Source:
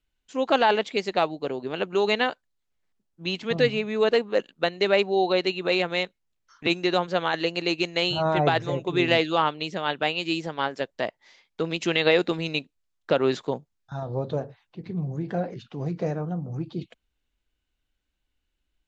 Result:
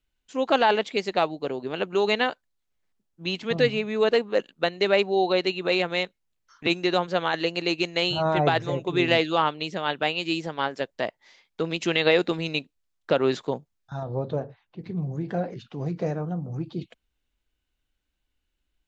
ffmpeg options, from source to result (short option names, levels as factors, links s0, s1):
-filter_complex "[0:a]asettb=1/sr,asplit=3[s0][s1][s2];[s0]atrim=end=14.034[s3];[s1]atrim=start=14.03:end=14.79,asetpts=PTS-STARTPTS,afade=t=in:d=0.004:c=qsin,afade=t=out:st=0.756:d=0.004:c=qsin,highshelf=f=5400:g=-11.5[s4];[s2]atrim=start=14.786[s5];[s3][s4]acrossfade=d=0.004:c1=hsin:c2=qsin[s6];[s6][s5]acrossfade=d=0.004:c1=qsin:c2=hsin"